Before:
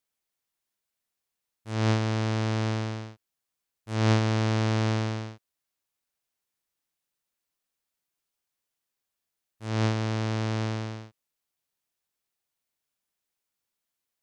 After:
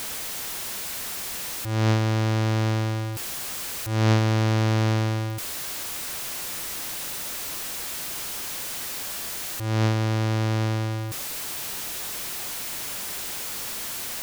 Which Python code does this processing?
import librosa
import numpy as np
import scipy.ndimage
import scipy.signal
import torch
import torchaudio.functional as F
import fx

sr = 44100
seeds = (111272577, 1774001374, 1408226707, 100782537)

y = x + 0.5 * 10.0 ** (-26.5 / 20.0) * np.sign(x)
y = y * 10.0 ** (1.0 / 20.0)